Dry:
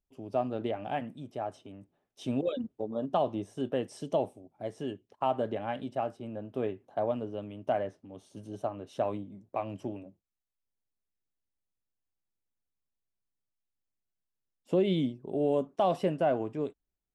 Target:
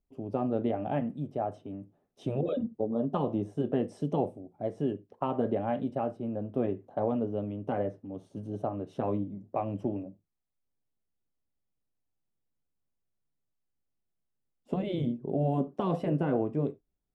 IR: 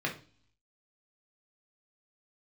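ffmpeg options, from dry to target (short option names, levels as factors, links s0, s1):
-filter_complex "[0:a]asplit=2[s0][s1];[1:a]atrim=start_sample=2205,afade=t=out:st=0.4:d=0.01,atrim=end_sample=18081,atrim=end_sample=4410[s2];[s1][s2]afir=irnorm=-1:irlink=0,volume=0.15[s3];[s0][s3]amix=inputs=2:normalize=0,afftfilt=real='re*lt(hypot(re,im),0.316)':imag='im*lt(hypot(re,im),0.316)':win_size=1024:overlap=0.75,tiltshelf=f=1200:g=8,volume=0.794"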